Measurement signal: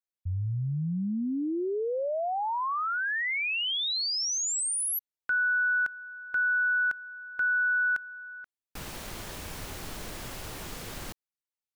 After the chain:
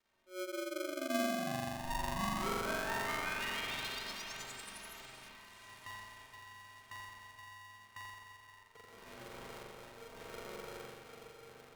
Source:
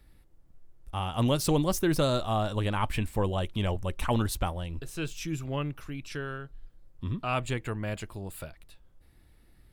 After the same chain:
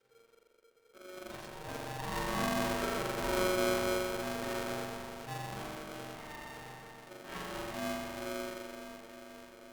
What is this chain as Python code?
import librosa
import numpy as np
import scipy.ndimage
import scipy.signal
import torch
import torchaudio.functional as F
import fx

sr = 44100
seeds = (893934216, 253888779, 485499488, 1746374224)

y = fx.echo_diffused(x, sr, ms=508, feedback_pct=65, wet_db=-10)
y = fx.dmg_crackle(y, sr, seeds[0], per_s=520.0, level_db=-47.0)
y = fx.lowpass(y, sr, hz=2100.0, slope=6)
y = fx.stiff_resonator(y, sr, f0_hz=100.0, decay_s=0.2, stiffness=0.03)
y = fx.auto_swell(y, sr, attack_ms=315.0)
y = fx.rev_spring(y, sr, rt60_s=2.2, pass_ms=(42,), chirp_ms=65, drr_db=-6.0)
y = y * np.sign(np.sin(2.0 * np.pi * 460.0 * np.arange(len(y)) / sr))
y = y * 10.0 ** (-6.5 / 20.0)